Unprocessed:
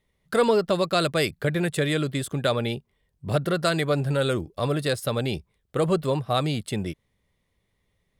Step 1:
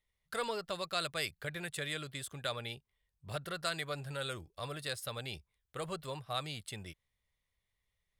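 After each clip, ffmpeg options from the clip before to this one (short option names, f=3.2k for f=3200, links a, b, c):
-af "equalizer=f=260:w=0.46:g=-14.5,volume=-8dB"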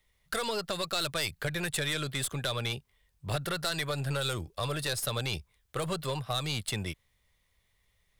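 -filter_complex "[0:a]asplit=2[a][b];[b]alimiter=level_in=4.5dB:limit=-24dB:level=0:latency=1,volume=-4.5dB,volume=1dB[c];[a][c]amix=inputs=2:normalize=0,acrossover=split=170|3000[d][e][f];[e]acompressor=threshold=-35dB:ratio=6[g];[d][g][f]amix=inputs=3:normalize=0,aeval=exprs='(tanh(28.2*val(0)+0.35)-tanh(0.35))/28.2':c=same,volume=6.5dB"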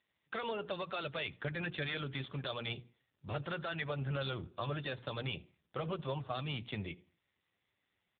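-filter_complex "[0:a]bandreject=f=60:t=h:w=6,bandreject=f=120:t=h:w=6,bandreject=f=180:t=h:w=6,bandreject=f=240:t=h:w=6,bandreject=f=300:t=h:w=6,bandreject=f=360:t=h:w=6,bandreject=f=420:t=h:w=6,bandreject=f=480:t=h:w=6,asplit=2[a][b];[b]adelay=80,lowpass=f=2.9k:p=1,volume=-21.5dB,asplit=2[c][d];[d]adelay=80,lowpass=f=2.9k:p=1,volume=0.41,asplit=2[e][f];[f]adelay=80,lowpass=f=2.9k:p=1,volume=0.41[g];[a][c][e][g]amix=inputs=4:normalize=0,volume=-3.5dB" -ar 8000 -c:a libopencore_amrnb -b:a 6700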